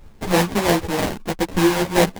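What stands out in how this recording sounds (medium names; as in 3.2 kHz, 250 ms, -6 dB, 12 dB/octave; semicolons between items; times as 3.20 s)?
aliases and images of a low sample rate 1.3 kHz, jitter 20%; a shimmering, thickened sound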